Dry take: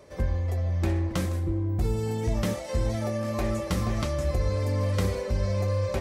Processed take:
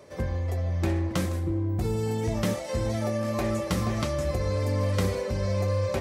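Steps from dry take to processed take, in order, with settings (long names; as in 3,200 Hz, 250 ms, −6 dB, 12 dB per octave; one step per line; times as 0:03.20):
high-pass filter 83 Hz
level +1.5 dB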